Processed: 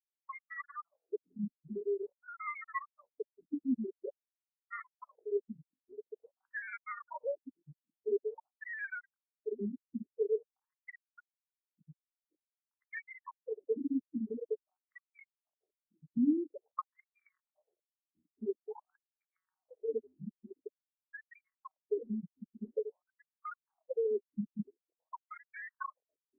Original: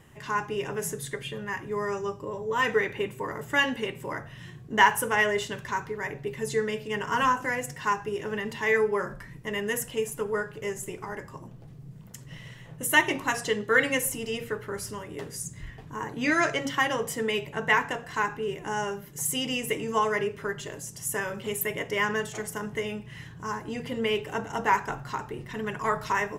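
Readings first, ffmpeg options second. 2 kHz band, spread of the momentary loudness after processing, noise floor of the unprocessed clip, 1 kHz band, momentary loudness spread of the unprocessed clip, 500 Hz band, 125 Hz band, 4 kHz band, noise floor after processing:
−20.0 dB, 18 LU, −46 dBFS, −20.0 dB, 14 LU, −9.5 dB, −16.0 dB, below −40 dB, below −85 dBFS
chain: -filter_complex "[0:a]aresample=8000,aresample=44100,acrossover=split=250[link_01][link_02];[link_02]acompressor=threshold=-36dB:ratio=8[link_03];[link_01][link_03]amix=inputs=2:normalize=0,afftfilt=real='re*gte(hypot(re,im),0.112)':imag='im*gte(hypot(re,im),0.112)':win_size=1024:overlap=0.75,acrossover=split=250[link_04][link_05];[link_04]acompressor=threshold=-40dB:ratio=8[link_06];[link_06][link_05]amix=inputs=2:normalize=0,acrusher=samples=22:mix=1:aa=0.000001:lfo=1:lforange=13.2:lforate=0.45,afftfilt=real='re*between(b*sr/1024,220*pow(1700/220,0.5+0.5*sin(2*PI*0.48*pts/sr))/1.41,220*pow(1700/220,0.5+0.5*sin(2*PI*0.48*pts/sr))*1.41)':imag='im*between(b*sr/1024,220*pow(1700/220,0.5+0.5*sin(2*PI*0.48*pts/sr))/1.41,220*pow(1700/220,0.5+0.5*sin(2*PI*0.48*pts/sr))*1.41)':win_size=1024:overlap=0.75,volume=7.5dB"

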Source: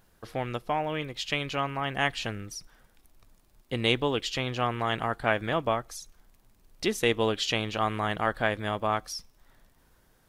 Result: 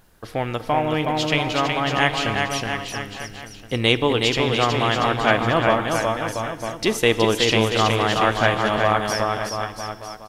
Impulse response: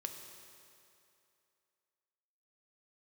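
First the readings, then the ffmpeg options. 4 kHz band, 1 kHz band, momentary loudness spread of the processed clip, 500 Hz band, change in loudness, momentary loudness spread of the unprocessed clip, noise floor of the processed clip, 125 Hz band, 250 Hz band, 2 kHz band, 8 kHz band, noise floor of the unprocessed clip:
+9.5 dB, +9.5 dB, 11 LU, +9.5 dB, +8.5 dB, 11 LU, −41 dBFS, +9.5 dB, +9.5 dB, +9.5 dB, +9.5 dB, −64 dBFS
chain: -filter_complex "[0:a]aecho=1:1:370|684.5|951.8|1179|1372:0.631|0.398|0.251|0.158|0.1,asplit=2[link_01][link_02];[1:a]atrim=start_sample=2205,afade=type=out:start_time=0.42:duration=0.01,atrim=end_sample=18963,asetrate=35721,aresample=44100[link_03];[link_02][link_03]afir=irnorm=-1:irlink=0,volume=-4dB[link_04];[link_01][link_04]amix=inputs=2:normalize=0,volume=3.5dB"

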